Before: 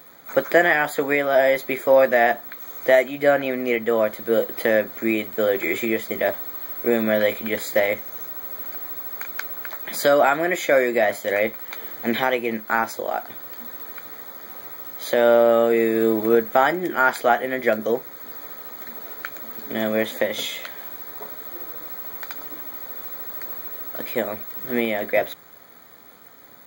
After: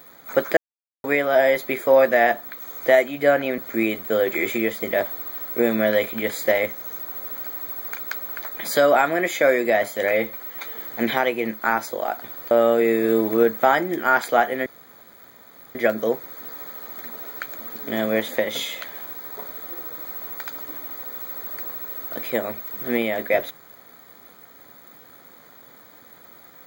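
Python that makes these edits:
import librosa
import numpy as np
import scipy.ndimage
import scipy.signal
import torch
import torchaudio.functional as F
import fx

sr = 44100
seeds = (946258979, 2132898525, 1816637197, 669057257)

y = fx.edit(x, sr, fx.silence(start_s=0.57, length_s=0.47),
    fx.cut(start_s=3.58, length_s=1.28),
    fx.stretch_span(start_s=11.39, length_s=0.44, factor=1.5),
    fx.cut(start_s=13.57, length_s=1.86),
    fx.insert_room_tone(at_s=17.58, length_s=1.09), tone=tone)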